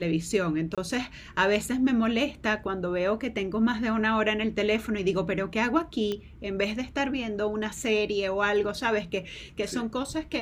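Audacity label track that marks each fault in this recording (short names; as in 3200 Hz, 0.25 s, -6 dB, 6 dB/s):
0.750000	0.780000	gap 26 ms
6.120000	6.120000	pop -18 dBFS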